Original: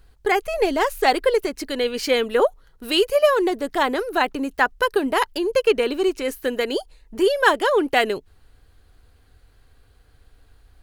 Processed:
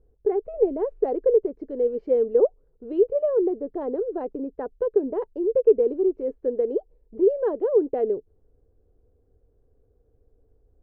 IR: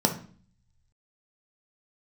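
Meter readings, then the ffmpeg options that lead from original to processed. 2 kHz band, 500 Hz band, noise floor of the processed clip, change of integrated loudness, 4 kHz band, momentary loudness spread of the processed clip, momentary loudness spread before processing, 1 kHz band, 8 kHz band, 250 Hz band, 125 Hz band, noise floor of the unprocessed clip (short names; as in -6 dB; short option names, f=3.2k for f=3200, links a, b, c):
under -30 dB, -0.5 dB, -65 dBFS, -3.0 dB, under -40 dB, 10 LU, 8 LU, -16.5 dB, under -40 dB, -3.5 dB, n/a, -56 dBFS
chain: -af "lowpass=f=460:t=q:w=3.5,volume=-9dB"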